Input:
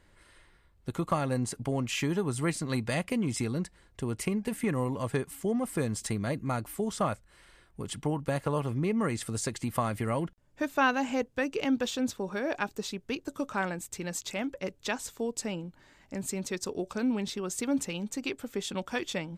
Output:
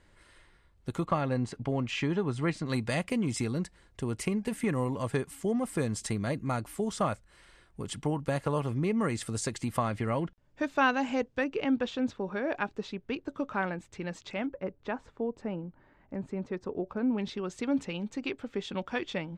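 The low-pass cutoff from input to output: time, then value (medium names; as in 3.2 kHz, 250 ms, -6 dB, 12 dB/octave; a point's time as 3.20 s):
9.8 kHz
from 1.05 s 4 kHz
from 2.66 s 10 kHz
from 9.78 s 5.4 kHz
from 11.44 s 2.9 kHz
from 14.46 s 1.4 kHz
from 17.18 s 3.4 kHz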